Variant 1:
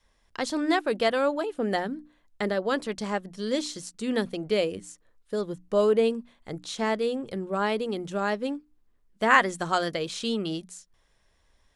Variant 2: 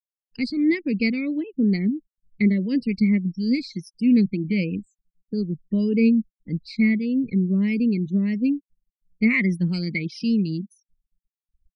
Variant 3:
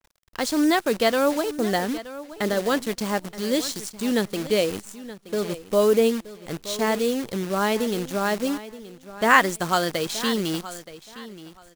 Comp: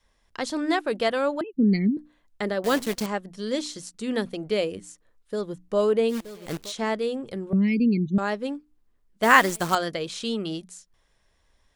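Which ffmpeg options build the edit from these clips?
-filter_complex "[1:a]asplit=2[s0][s1];[2:a]asplit=3[s2][s3][s4];[0:a]asplit=6[s5][s6][s7][s8][s9][s10];[s5]atrim=end=1.412[s11];[s0]atrim=start=1.408:end=1.972[s12];[s6]atrim=start=1.968:end=2.642[s13];[s2]atrim=start=2.638:end=3.062[s14];[s7]atrim=start=3.058:end=6.18[s15];[s3]atrim=start=6.08:end=6.73[s16];[s8]atrim=start=6.63:end=7.532[s17];[s1]atrim=start=7.528:end=8.182[s18];[s9]atrim=start=8.178:end=9.232[s19];[s4]atrim=start=9.228:end=9.752[s20];[s10]atrim=start=9.748[s21];[s11][s12]acrossfade=d=0.004:c1=hsin:c2=hsin[s22];[s22][s13]acrossfade=d=0.004:c1=hsin:c2=hsin[s23];[s23][s14]acrossfade=d=0.004:c1=hsin:c2=hsin[s24];[s24][s15]acrossfade=d=0.004:c1=hsin:c2=hsin[s25];[s25][s16]acrossfade=d=0.1:c1=tri:c2=tri[s26];[s26][s17]acrossfade=d=0.1:c1=tri:c2=tri[s27];[s27][s18]acrossfade=d=0.004:c1=hsin:c2=hsin[s28];[s28][s19]acrossfade=d=0.004:c1=hsin:c2=hsin[s29];[s29][s20]acrossfade=d=0.004:c1=hsin:c2=hsin[s30];[s30][s21]acrossfade=d=0.004:c1=hsin:c2=hsin"

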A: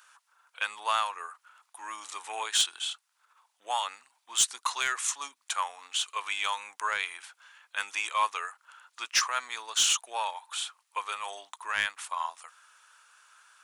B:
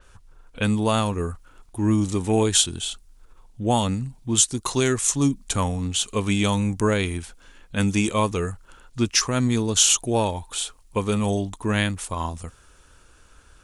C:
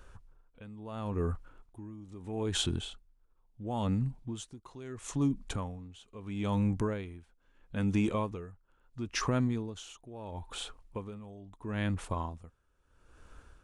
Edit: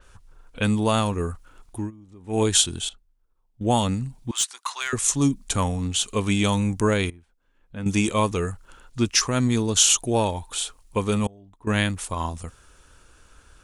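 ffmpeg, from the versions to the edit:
-filter_complex "[2:a]asplit=4[s0][s1][s2][s3];[1:a]asplit=6[s4][s5][s6][s7][s8][s9];[s4]atrim=end=1.91[s10];[s0]atrim=start=1.75:end=2.43[s11];[s5]atrim=start=2.27:end=2.892[s12];[s1]atrim=start=2.888:end=3.612[s13];[s6]atrim=start=3.608:end=4.312[s14];[0:a]atrim=start=4.308:end=4.932[s15];[s7]atrim=start=4.928:end=7.102[s16];[s2]atrim=start=7.098:end=7.862[s17];[s8]atrim=start=7.858:end=11.272[s18];[s3]atrim=start=11.268:end=11.672[s19];[s9]atrim=start=11.668[s20];[s10][s11]acrossfade=d=0.16:c1=tri:c2=tri[s21];[s21][s12]acrossfade=d=0.16:c1=tri:c2=tri[s22];[s22][s13]acrossfade=d=0.004:c1=hsin:c2=hsin[s23];[s23][s14]acrossfade=d=0.004:c1=hsin:c2=hsin[s24];[s24][s15]acrossfade=d=0.004:c1=hsin:c2=hsin[s25];[s25][s16]acrossfade=d=0.004:c1=hsin:c2=hsin[s26];[s26][s17]acrossfade=d=0.004:c1=hsin:c2=hsin[s27];[s27][s18]acrossfade=d=0.004:c1=hsin:c2=hsin[s28];[s28][s19]acrossfade=d=0.004:c1=hsin:c2=hsin[s29];[s29][s20]acrossfade=d=0.004:c1=hsin:c2=hsin"

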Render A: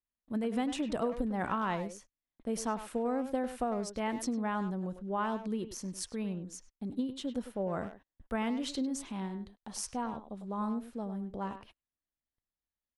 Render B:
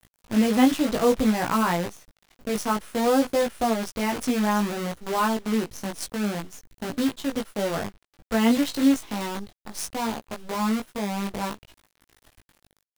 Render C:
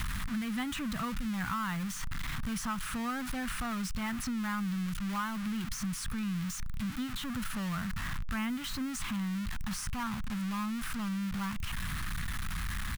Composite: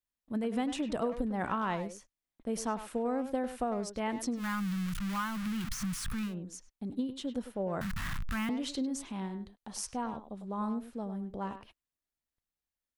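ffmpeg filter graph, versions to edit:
-filter_complex "[2:a]asplit=2[s0][s1];[0:a]asplit=3[s2][s3][s4];[s2]atrim=end=4.44[s5];[s0]atrim=start=4.34:end=6.35[s6];[s3]atrim=start=6.25:end=7.812[s7];[s1]atrim=start=7.808:end=8.492[s8];[s4]atrim=start=8.488[s9];[s5][s6]acrossfade=d=0.1:c1=tri:c2=tri[s10];[s10][s7]acrossfade=d=0.1:c1=tri:c2=tri[s11];[s11][s8]acrossfade=d=0.004:c1=hsin:c2=hsin[s12];[s12][s9]acrossfade=d=0.004:c1=hsin:c2=hsin"

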